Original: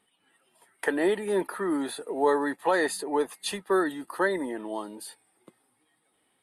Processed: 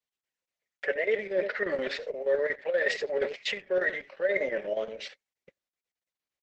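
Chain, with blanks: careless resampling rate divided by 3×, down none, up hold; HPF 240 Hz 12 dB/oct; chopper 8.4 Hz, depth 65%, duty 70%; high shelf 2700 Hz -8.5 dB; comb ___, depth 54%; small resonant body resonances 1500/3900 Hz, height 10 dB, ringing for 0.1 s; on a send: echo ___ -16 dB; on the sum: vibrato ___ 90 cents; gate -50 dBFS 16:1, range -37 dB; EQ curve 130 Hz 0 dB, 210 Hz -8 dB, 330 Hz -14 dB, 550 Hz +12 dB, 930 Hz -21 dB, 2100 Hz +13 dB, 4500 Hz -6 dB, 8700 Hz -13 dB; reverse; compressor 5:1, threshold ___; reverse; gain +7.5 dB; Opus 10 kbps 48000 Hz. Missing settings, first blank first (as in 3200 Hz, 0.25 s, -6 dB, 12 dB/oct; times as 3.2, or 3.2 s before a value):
5 ms, 89 ms, 2.1 Hz, -33 dBFS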